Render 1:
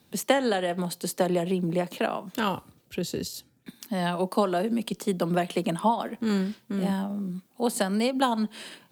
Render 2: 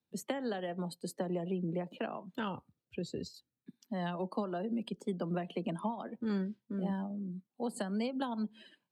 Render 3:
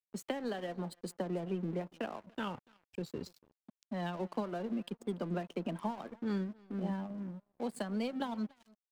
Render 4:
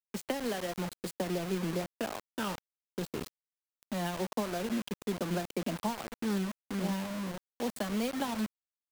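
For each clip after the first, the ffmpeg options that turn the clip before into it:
ffmpeg -i in.wav -filter_complex "[0:a]afftdn=noise_reduction=19:noise_floor=-38,highshelf=frequency=8300:gain=-8.5,acrossover=split=270[link_01][link_02];[link_02]acompressor=threshold=-27dB:ratio=6[link_03];[link_01][link_03]amix=inputs=2:normalize=0,volume=-8dB" out.wav
ffmpeg -i in.wav -af "aeval=exprs='sgn(val(0))*max(abs(val(0))-0.002,0)':channel_layout=same,aecho=1:1:287:0.0794,aeval=exprs='sgn(val(0))*max(abs(val(0))-0.001,0)':channel_layout=same" out.wav
ffmpeg -i in.wav -af "acrusher=bits=6:mix=0:aa=0.000001,volume=3dB" out.wav

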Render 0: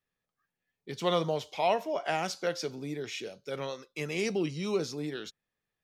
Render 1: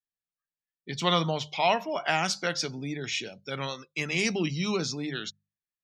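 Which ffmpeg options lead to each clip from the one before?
ffmpeg -i in.wav -af "afftdn=noise_reduction=24:noise_floor=-53,equalizer=frequency=470:width=1:gain=-11,bandreject=frequency=50:width_type=h:width=6,bandreject=frequency=100:width_type=h:width=6,bandreject=frequency=150:width_type=h:width=6,bandreject=frequency=200:width_type=h:width=6,volume=8.5dB" out.wav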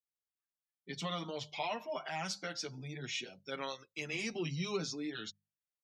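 ffmpeg -i in.wav -filter_complex "[0:a]alimiter=limit=-18.5dB:level=0:latency=1:release=161,asplit=2[link_01][link_02];[link_02]adelay=6.7,afreqshift=0.77[link_03];[link_01][link_03]amix=inputs=2:normalize=1,volume=-5dB" out.wav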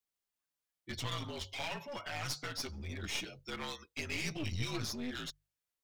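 ffmpeg -i in.wav -filter_complex "[0:a]acrossover=split=370|1000[link_01][link_02][link_03];[link_02]acompressor=threshold=-54dB:ratio=6[link_04];[link_01][link_04][link_03]amix=inputs=3:normalize=0,afreqshift=-54,aeval=exprs='clip(val(0),-1,0.00447)':channel_layout=same,volume=4dB" out.wav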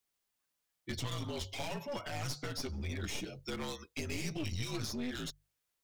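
ffmpeg -i in.wav -filter_complex "[0:a]acrossover=split=660|5800[link_01][link_02][link_03];[link_01]acompressor=threshold=-41dB:ratio=4[link_04];[link_02]acompressor=threshold=-51dB:ratio=4[link_05];[link_03]acompressor=threshold=-52dB:ratio=4[link_06];[link_04][link_05][link_06]amix=inputs=3:normalize=0,volume=6dB" out.wav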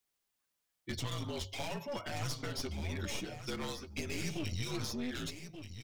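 ffmpeg -i in.wav -af "aecho=1:1:1181:0.316" out.wav

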